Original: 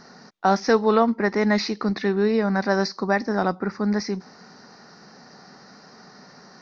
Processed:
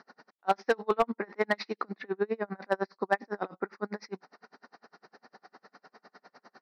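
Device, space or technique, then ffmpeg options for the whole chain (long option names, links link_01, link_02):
helicopter radio: -filter_complex "[0:a]asettb=1/sr,asplit=3[link_01][link_02][link_03];[link_01]atrim=end=2.014[link_04];[link_02]atrim=start=2.01:end=2.96,asetpts=PTS-STARTPTS,afade=type=in:duration=0.004:curve=qsin,afade=type=out:start_time=0.946:duration=0.004:curve=qsin,highshelf=frequency=3300:gain=-8.5[link_05];[link_03]atrim=start=2.956[link_06];[link_04][link_05]acrossfade=duration=0.004:curve1=hsin:curve2=qsin[link_07];[link_07][link_06]acrossfade=duration=0.004:curve1=qsin:curve2=hsin,highpass=360,lowpass=3000,aeval=exprs='val(0)*pow(10,-37*(0.5-0.5*cos(2*PI*9.9*n/s))/20)':channel_layout=same,asoftclip=type=hard:threshold=-15dB"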